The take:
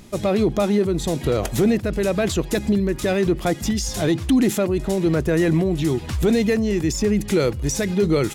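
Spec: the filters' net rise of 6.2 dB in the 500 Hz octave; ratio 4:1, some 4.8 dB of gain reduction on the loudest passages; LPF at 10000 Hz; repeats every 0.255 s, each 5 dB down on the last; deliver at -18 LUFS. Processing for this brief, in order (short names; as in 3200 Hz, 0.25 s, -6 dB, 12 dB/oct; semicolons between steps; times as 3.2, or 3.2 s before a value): LPF 10000 Hz; bell 500 Hz +8 dB; compressor 4:1, threshold -15 dBFS; feedback echo 0.255 s, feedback 56%, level -5 dB; gain +0.5 dB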